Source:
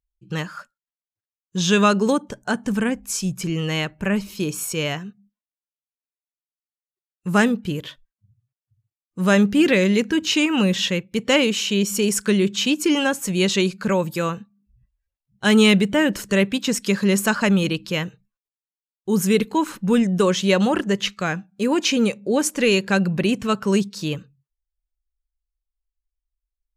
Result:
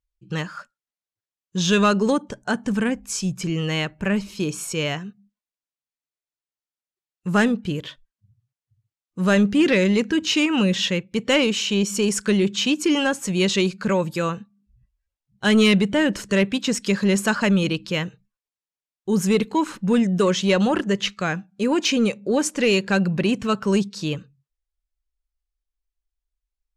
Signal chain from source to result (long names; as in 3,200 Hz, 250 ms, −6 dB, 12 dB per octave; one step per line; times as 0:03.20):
low-pass filter 8,500 Hz 12 dB per octave
soft clipping −8 dBFS, distortion −22 dB